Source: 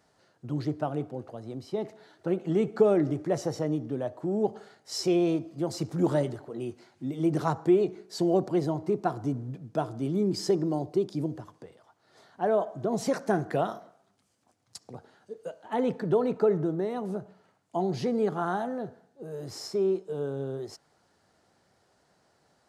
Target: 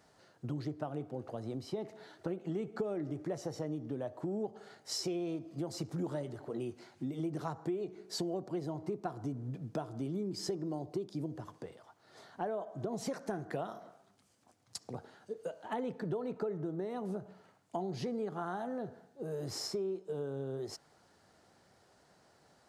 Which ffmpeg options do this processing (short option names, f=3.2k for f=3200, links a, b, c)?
-af "acompressor=threshold=-37dB:ratio=5,volume=1.5dB"